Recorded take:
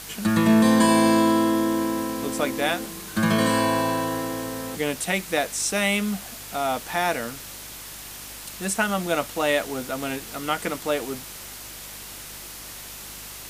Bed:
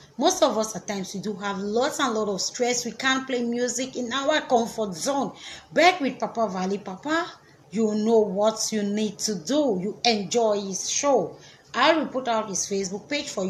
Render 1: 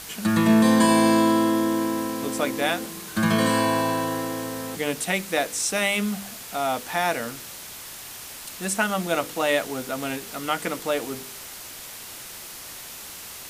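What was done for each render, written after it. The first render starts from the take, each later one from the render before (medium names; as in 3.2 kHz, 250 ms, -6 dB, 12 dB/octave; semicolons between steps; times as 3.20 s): de-hum 50 Hz, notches 11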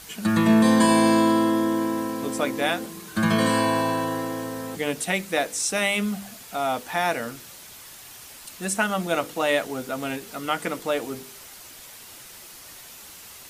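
noise reduction 6 dB, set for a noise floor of -40 dBFS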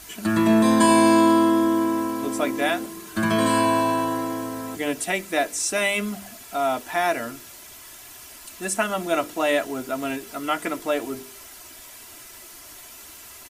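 peaking EQ 4 kHz -3 dB 0.84 oct; comb 3 ms, depth 55%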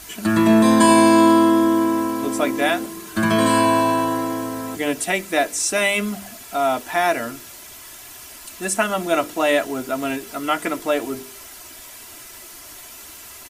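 trim +3.5 dB; peak limiter -3 dBFS, peak gain reduction 1 dB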